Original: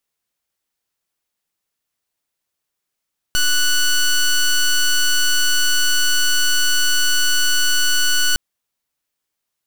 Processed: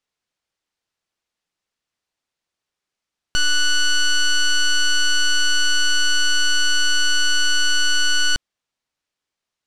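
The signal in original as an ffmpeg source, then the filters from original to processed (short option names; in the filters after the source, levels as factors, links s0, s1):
-f lavfi -i "aevalsrc='0.178*(2*lt(mod(1480*t,1),0.12)-1)':d=5.01:s=44100"
-af "lowpass=6200"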